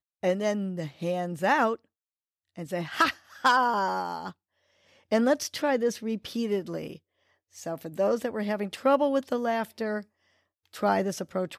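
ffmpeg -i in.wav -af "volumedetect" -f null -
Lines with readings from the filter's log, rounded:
mean_volume: -28.8 dB
max_volume: -11.9 dB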